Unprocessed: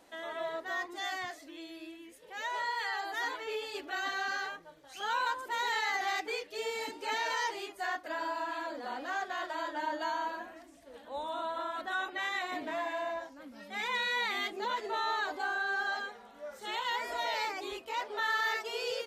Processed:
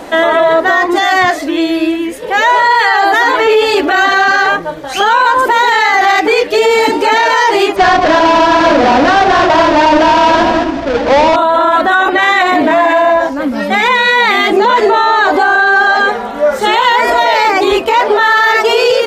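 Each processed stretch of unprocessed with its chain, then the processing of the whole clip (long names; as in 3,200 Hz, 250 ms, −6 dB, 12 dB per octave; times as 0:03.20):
0:07.76–0:11.36: each half-wave held at its own peak + low-pass filter 5,600 Hz 24 dB per octave + delay that swaps between a low-pass and a high-pass 104 ms, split 860 Hz, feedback 50%, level −8 dB
whole clip: high-shelf EQ 2,500 Hz −10 dB; boost into a limiter +35.5 dB; level −1 dB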